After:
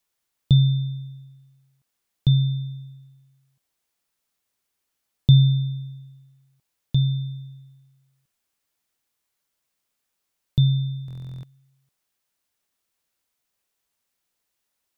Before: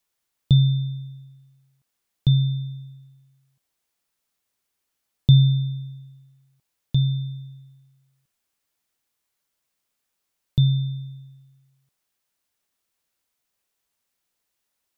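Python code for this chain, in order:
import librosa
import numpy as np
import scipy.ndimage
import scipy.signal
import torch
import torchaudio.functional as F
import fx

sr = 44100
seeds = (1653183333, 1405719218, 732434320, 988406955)

y = fx.buffer_glitch(x, sr, at_s=(11.06,), block=1024, repeats=15)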